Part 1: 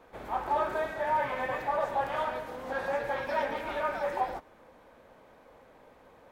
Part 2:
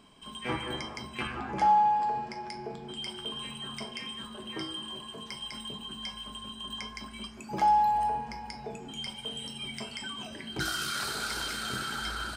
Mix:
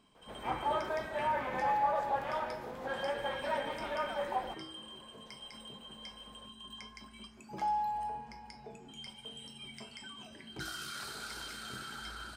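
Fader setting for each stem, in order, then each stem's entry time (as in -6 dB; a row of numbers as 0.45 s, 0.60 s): -4.5 dB, -9.5 dB; 0.15 s, 0.00 s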